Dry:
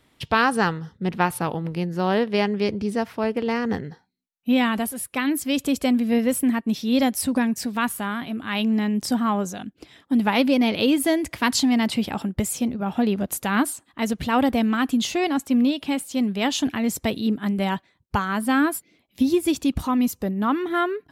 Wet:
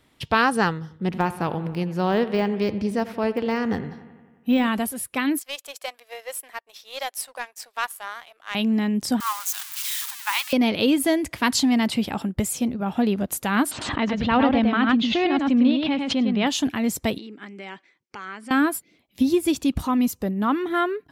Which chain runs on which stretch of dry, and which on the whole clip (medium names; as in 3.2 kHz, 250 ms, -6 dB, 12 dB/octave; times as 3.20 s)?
0.73–4.68 s: de-esser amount 85% + bucket-brigade echo 89 ms, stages 2048, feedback 67%, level -16 dB
5.39–8.55 s: inverse Chebyshev high-pass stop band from 220 Hz, stop band 50 dB + power-law waveshaper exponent 1.4
9.20–10.53 s: zero-crossing glitches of -18 dBFS + elliptic high-pass 960 Hz, stop band 60 dB
13.71–16.47 s: low-pass 4 kHz 24 dB/octave + delay 103 ms -4.5 dB + swell ahead of each attack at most 55 dB/s
17.18–18.51 s: compression 5:1, threshold -30 dBFS + cabinet simulation 350–7600 Hz, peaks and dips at 350 Hz +4 dB, 650 Hz -7 dB, 970 Hz -5 dB, 2.2 kHz +7 dB, 3.8 kHz -5 dB, 5.5 kHz +3 dB
whole clip: none